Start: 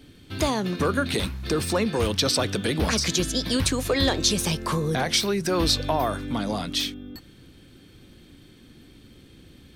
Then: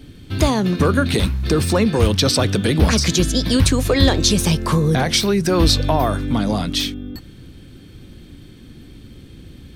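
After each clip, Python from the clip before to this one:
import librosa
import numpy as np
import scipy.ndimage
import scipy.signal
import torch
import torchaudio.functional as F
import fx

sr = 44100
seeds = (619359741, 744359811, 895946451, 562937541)

y = fx.low_shelf(x, sr, hz=220.0, db=8.5)
y = y * librosa.db_to_amplitude(4.5)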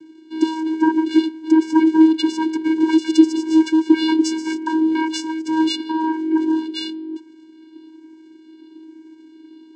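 y = fx.spec_ripple(x, sr, per_octave=0.94, drift_hz=-1.1, depth_db=23)
y = fx.vocoder(y, sr, bands=8, carrier='square', carrier_hz=318.0)
y = y * librosa.db_to_amplitude(-3.5)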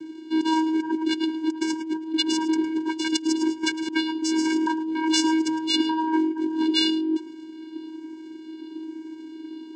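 y = fx.over_compress(x, sr, threshold_db=-25.0, ratio=-1.0)
y = y + 10.0 ** (-16.0 / 20.0) * np.pad(y, (int(108 * sr / 1000.0), 0))[:len(y)]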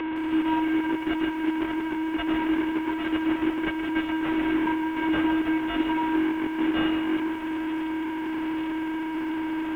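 y = fx.delta_mod(x, sr, bps=16000, step_db=-21.0)
y = fx.air_absorb(y, sr, metres=250.0)
y = fx.echo_crushed(y, sr, ms=161, feedback_pct=35, bits=8, wet_db=-9)
y = y * librosa.db_to_amplitude(-1.5)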